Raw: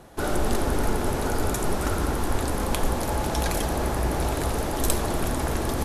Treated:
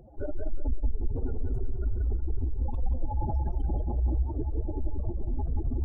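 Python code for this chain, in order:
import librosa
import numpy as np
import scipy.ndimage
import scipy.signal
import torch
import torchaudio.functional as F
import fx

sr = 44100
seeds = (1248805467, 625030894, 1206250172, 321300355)

y = fx.spec_expand(x, sr, power=3.8)
y = fx.echo_filtered(y, sr, ms=181, feedback_pct=35, hz=4300.0, wet_db=-5.0)
y = fx.record_warp(y, sr, rpm=78.0, depth_cents=100.0)
y = y * 10.0 ** (-2.0 / 20.0)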